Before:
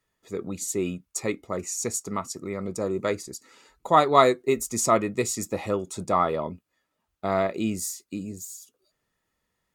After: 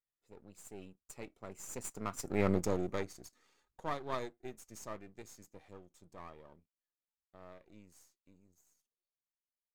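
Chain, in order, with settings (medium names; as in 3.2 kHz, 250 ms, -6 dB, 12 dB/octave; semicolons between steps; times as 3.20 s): partial rectifier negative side -12 dB; Doppler pass-by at 2.47 s, 17 m/s, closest 1.8 m; trim +5 dB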